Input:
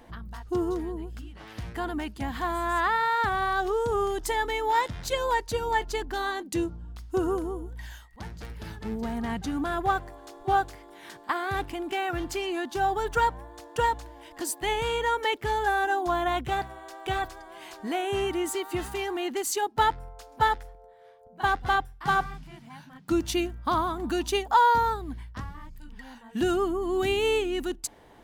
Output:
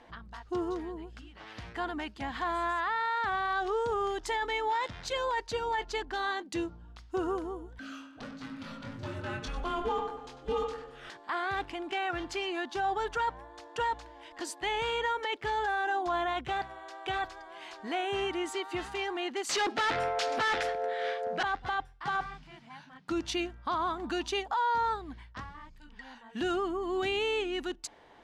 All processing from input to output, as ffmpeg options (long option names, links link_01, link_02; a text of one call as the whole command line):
ffmpeg -i in.wav -filter_complex "[0:a]asettb=1/sr,asplit=3[link_01][link_02][link_03];[link_01]atrim=end=7.794[link_04];[link_02]atrim=start=7.79:end=11.1,asetpts=PTS-STARTPTS,afade=type=in:duration=0.004:curve=qsin,afade=type=out:start_time=3.306:duration=0.004:curve=qsin,afreqshift=-330,asplit=2[link_05][link_06];[link_06]adelay=23,volume=-5dB[link_07];[link_05][link_07]amix=inputs=2:normalize=0,atrim=end_sample=145971,asplit=2[link_08][link_09];[link_09]adelay=96,lowpass=frequency=3600:poles=1,volume=-9dB,asplit=2[link_10][link_11];[link_11]adelay=96,lowpass=frequency=3600:poles=1,volume=0.49,asplit=2[link_12][link_13];[link_13]adelay=96,lowpass=frequency=3600:poles=1,volume=0.49,asplit=2[link_14][link_15];[link_15]adelay=96,lowpass=frequency=3600:poles=1,volume=0.49,asplit=2[link_16][link_17];[link_17]adelay=96,lowpass=frequency=3600:poles=1,volume=0.49,asplit=2[link_18][link_19];[link_19]adelay=96,lowpass=frequency=3600:poles=1,volume=0.49[link_20];[link_08][link_10][link_12][link_14][link_16][link_18][link_20]amix=inputs=7:normalize=0,atrim=end_sample=145971[link_21];[link_03]atrim=start=11.096[link_22];[link_04][link_21]acrossfade=duration=0.004:curve1=hsin:curve2=qsin[link_23];[link_23][link_22]acrossfade=duration=0.004:curve1=qsin:curve2=hsin,asettb=1/sr,asplit=3[link_24][link_25][link_26];[link_24]atrim=end=19.494[link_27];[link_25]atrim=start=19.49:end=21.43,asetpts=PTS-STARTPTS,afade=type=in:duration=0.004:curve=qsin,afade=type=out:start_time=1.936:duration=0.004:curve=qsin,highpass=67,equalizer=frequency=970:width_type=o:width=0.46:gain=-14,asplit=2[link_28][link_29];[link_29]highpass=frequency=720:poles=1,volume=37dB,asoftclip=type=tanh:threshold=-15.5dB[link_30];[link_28][link_30]amix=inputs=2:normalize=0,lowpass=frequency=4500:poles=1,volume=-6dB[link_31];[link_26]atrim=start=21.426[link_32];[link_27][link_31]acrossfade=duration=0.004:curve1=hsin:curve2=qsin[link_33];[link_33][link_32]acrossfade=duration=0.004:curve1=qsin:curve2=hsin,lowpass=5100,lowshelf=frequency=360:gain=-10.5,alimiter=limit=-23.5dB:level=0:latency=1:release=14" out.wav